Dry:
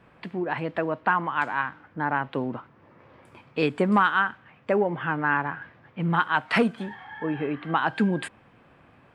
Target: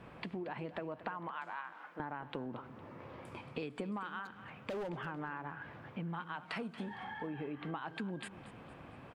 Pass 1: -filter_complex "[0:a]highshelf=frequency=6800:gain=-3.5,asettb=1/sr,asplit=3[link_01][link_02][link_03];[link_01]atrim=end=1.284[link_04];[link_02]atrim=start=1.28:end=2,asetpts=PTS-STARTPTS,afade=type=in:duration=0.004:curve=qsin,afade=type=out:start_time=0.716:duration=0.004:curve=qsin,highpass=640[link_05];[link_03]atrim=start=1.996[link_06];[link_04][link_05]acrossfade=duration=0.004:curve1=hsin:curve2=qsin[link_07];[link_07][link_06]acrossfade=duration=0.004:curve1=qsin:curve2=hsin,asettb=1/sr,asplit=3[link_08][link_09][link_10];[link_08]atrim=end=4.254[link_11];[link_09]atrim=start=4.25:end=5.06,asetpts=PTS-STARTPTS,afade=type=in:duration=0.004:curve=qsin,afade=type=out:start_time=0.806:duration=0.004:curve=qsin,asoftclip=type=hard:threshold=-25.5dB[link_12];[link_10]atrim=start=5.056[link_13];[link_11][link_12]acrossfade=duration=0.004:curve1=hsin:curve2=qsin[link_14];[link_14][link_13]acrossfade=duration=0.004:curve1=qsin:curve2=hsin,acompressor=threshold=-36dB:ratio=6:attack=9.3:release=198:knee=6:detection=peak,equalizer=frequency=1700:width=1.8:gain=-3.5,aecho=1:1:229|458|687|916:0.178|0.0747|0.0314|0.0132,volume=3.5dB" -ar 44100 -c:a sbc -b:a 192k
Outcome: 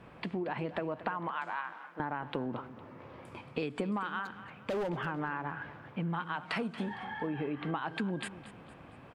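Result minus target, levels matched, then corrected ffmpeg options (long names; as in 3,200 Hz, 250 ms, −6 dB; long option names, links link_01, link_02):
downward compressor: peak gain reduction −6 dB
-filter_complex "[0:a]highshelf=frequency=6800:gain=-3.5,asettb=1/sr,asplit=3[link_01][link_02][link_03];[link_01]atrim=end=1.284[link_04];[link_02]atrim=start=1.28:end=2,asetpts=PTS-STARTPTS,afade=type=in:duration=0.004:curve=qsin,afade=type=out:start_time=0.716:duration=0.004:curve=qsin,highpass=640[link_05];[link_03]atrim=start=1.996[link_06];[link_04][link_05]acrossfade=duration=0.004:curve1=hsin:curve2=qsin[link_07];[link_07][link_06]acrossfade=duration=0.004:curve1=qsin:curve2=hsin,asettb=1/sr,asplit=3[link_08][link_09][link_10];[link_08]atrim=end=4.254[link_11];[link_09]atrim=start=4.25:end=5.06,asetpts=PTS-STARTPTS,afade=type=in:duration=0.004:curve=qsin,afade=type=out:start_time=0.806:duration=0.004:curve=qsin,asoftclip=type=hard:threshold=-25.5dB[link_12];[link_10]atrim=start=5.056[link_13];[link_11][link_12]acrossfade=duration=0.004:curve1=hsin:curve2=qsin[link_14];[link_14][link_13]acrossfade=duration=0.004:curve1=qsin:curve2=hsin,acompressor=threshold=-43.5dB:ratio=6:attack=9.3:release=198:knee=6:detection=peak,equalizer=frequency=1700:width=1.8:gain=-3.5,aecho=1:1:229|458|687|916:0.178|0.0747|0.0314|0.0132,volume=3.5dB" -ar 44100 -c:a sbc -b:a 192k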